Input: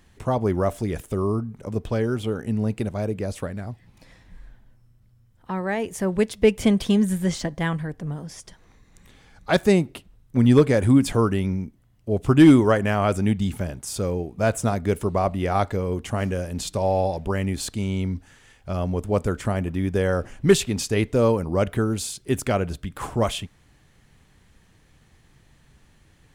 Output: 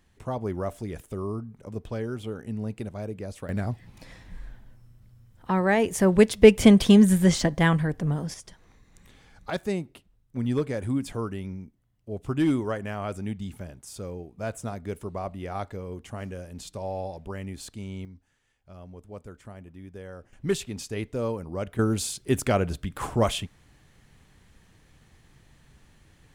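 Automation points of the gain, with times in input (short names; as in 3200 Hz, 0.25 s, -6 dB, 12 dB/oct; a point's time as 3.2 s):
-8 dB
from 3.49 s +4 dB
from 8.34 s -2.5 dB
from 9.5 s -11 dB
from 18.05 s -19.5 dB
from 20.33 s -10 dB
from 21.79 s -0.5 dB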